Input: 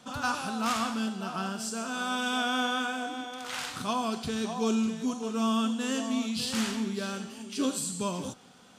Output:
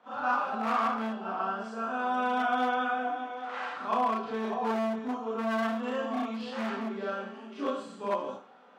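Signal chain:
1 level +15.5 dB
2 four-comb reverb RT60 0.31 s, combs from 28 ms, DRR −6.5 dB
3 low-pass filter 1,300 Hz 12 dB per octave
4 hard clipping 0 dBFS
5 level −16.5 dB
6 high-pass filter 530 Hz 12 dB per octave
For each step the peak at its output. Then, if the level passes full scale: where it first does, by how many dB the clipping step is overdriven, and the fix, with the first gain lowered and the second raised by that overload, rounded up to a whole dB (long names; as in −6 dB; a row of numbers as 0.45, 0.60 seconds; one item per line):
−1.0, +9.5, +8.5, 0.0, −16.5, −16.0 dBFS
step 2, 8.5 dB
step 1 +6.5 dB, step 5 −7.5 dB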